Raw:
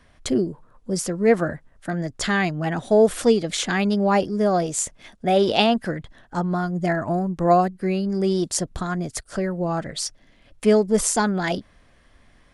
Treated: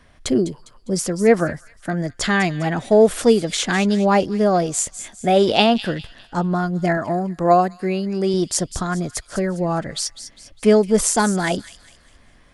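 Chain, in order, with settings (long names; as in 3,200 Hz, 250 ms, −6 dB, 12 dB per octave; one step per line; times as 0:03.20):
0:06.97–0:08.34: low-shelf EQ 120 Hz −11 dB
delay with a high-pass on its return 202 ms, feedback 40%, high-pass 2,900 Hz, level −11 dB
level +3 dB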